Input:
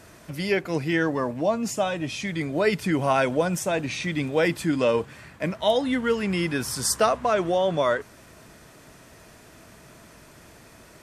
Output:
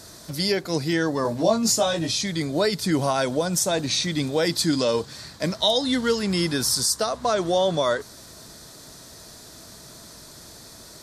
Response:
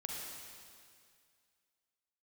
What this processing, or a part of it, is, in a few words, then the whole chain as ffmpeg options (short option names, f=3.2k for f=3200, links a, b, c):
over-bright horn tweeter: -filter_complex "[0:a]highshelf=f=3.3k:t=q:w=3:g=7,alimiter=limit=-13.5dB:level=0:latency=1:release=276,asettb=1/sr,asplit=3[a][b][c];[a]atrim=end=1.234[d];[b]atrim=start=1.23:end=2.12,asetpts=PTS-STARTPTS,afade=t=in:d=0.004:c=qsin,afade=t=out:st=0.886:d=0.004:c=qsin,asplit=2[e][f];[f]adelay=18,volume=-2dB[g];[e][g]amix=inputs=2:normalize=0,atrim=end_sample=39249[h];[c]atrim=start=2.116[i];[d][h]acrossfade=d=0.004:c1=hsin:c2=qsin[j];[j][i]acrossfade=d=0.004:c1=qsin:c2=hsin,asettb=1/sr,asplit=3[k][l][m];[k]atrim=end=4.474[n];[l]atrim=start=4.47:end=6.19,asetpts=PTS-STARTPTS,afade=t=in:d=0.004:c=qsin,afade=t=out:st=1.716:d=0.004:c=qsin,equalizer=f=4.9k:t=o:w=1:g=5[o];[m]atrim=start=6.186[p];[n][o]acrossfade=d=0.004:c1=hsin:c2=qsin[q];[q][p]acrossfade=d=0.004:c1=qsin:c2=hsin,volume=2dB"